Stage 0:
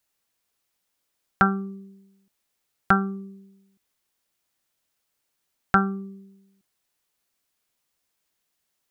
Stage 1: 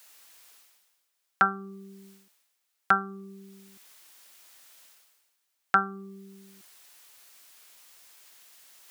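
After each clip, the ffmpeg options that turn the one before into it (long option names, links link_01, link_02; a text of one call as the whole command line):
ffmpeg -i in.wav -af "highpass=frequency=890:poles=1,areverse,acompressor=mode=upward:threshold=-36dB:ratio=2.5,areverse" out.wav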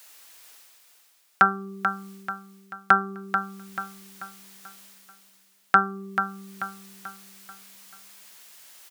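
ffmpeg -i in.wav -af "aecho=1:1:437|874|1311|1748|2185:0.422|0.181|0.078|0.0335|0.0144,volume=4.5dB" out.wav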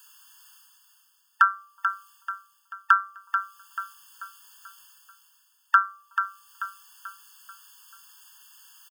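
ffmpeg -i in.wav -filter_complex "[0:a]acrossover=split=420[link_01][link_02];[link_01]adelay=370[link_03];[link_03][link_02]amix=inputs=2:normalize=0,afftfilt=real='re*eq(mod(floor(b*sr/1024/890),2),1)':imag='im*eq(mod(floor(b*sr/1024/890),2),1)':win_size=1024:overlap=0.75" out.wav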